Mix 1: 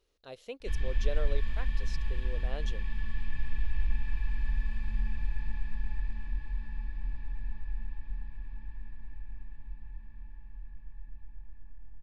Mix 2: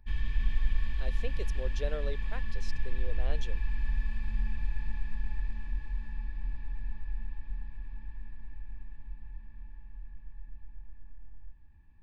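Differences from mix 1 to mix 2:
speech: entry +0.75 s; background: entry -0.60 s

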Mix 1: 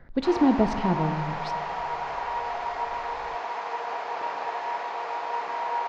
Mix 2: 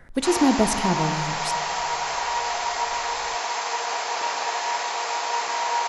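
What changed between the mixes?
speech: add bell 4500 Hz -10.5 dB 0.82 oct; master: remove tape spacing loss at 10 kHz 40 dB

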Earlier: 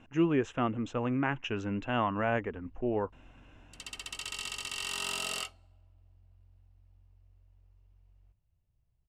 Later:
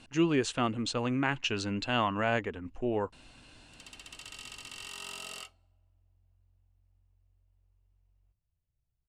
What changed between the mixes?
speech: remove running mean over 10 samples; background -7.5 dB

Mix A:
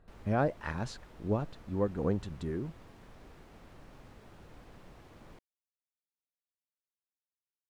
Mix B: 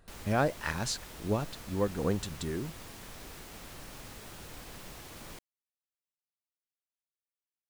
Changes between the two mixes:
background +4.5 dB; master: remove LPF 1100 Hz 6 dB/oct

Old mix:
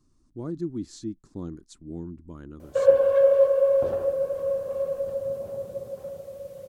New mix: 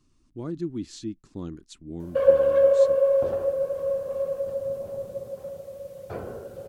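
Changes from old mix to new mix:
speech: add bell 2700 Hz +11.5 dB 0.96 oct; background: entry -0.60 s

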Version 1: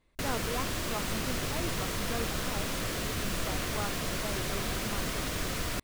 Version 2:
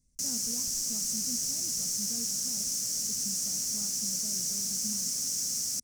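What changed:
background: add weighting filter A; master: add EQ curve 240 Hz 0 dB, 350 Hz -17 dB, 530 Hz -16 dB, 920 Hz -26 dB, 1900 Hz -22 dB, 3700 Hz -17 dB, 5700 Hz +15 dB, 10000 Hz +8 dB

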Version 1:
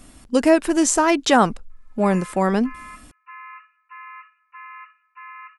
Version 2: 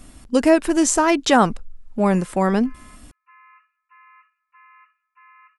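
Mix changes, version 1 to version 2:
background -11.0 dB; master: add low shelf 130 Hz +4.5 dB

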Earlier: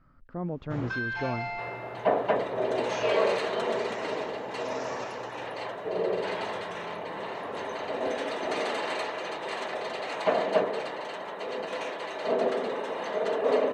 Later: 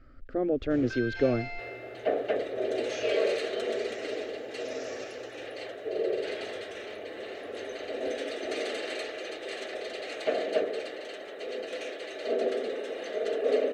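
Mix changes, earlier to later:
speech +10.5 dB; master: add fixed phaser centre 400 Hz, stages 4

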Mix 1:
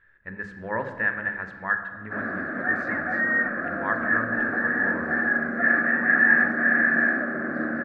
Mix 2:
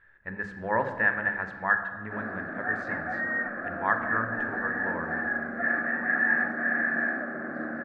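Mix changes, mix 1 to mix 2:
background -7.0 dB; master: add bell 790 Hz +6 dB 0.67 oct

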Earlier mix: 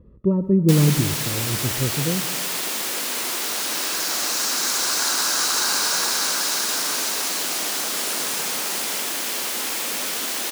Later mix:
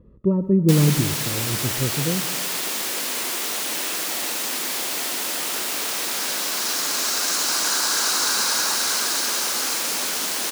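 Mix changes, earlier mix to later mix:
second sound: entry +2.65 s; master: add bell 74 Hz -4 dB 0.83 oct

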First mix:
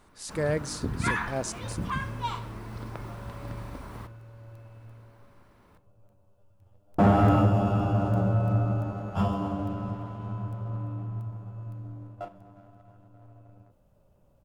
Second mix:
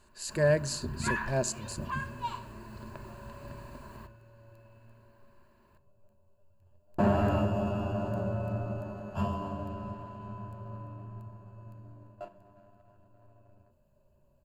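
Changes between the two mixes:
first sound -7.0 dB; second sound -6.0 dB; master: add ripple EQ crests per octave 1.4, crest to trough 11 dB

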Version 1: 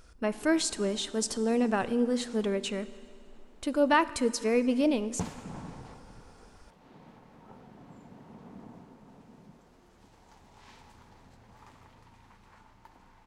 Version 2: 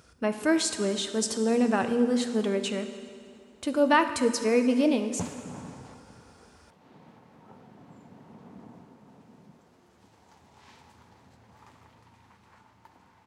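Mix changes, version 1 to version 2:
speech: send +9.0 dB; master: add HPF 71 Hz 24 dB/oct

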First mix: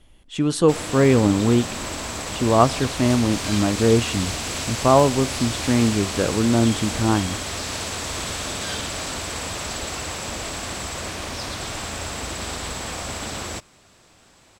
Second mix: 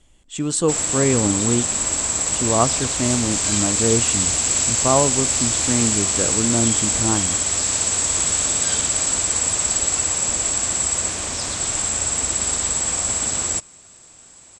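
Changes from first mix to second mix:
speech -3.0 dB; master: add synth low-pass 7700 Hz, resonance Q 7.6

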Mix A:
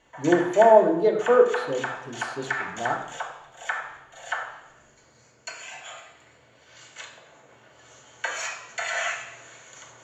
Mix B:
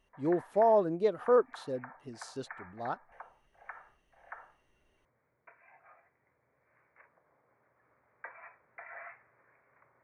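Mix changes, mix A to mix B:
background: add steep low-pass 2300 Hz 96 dB/oct; reverb: off

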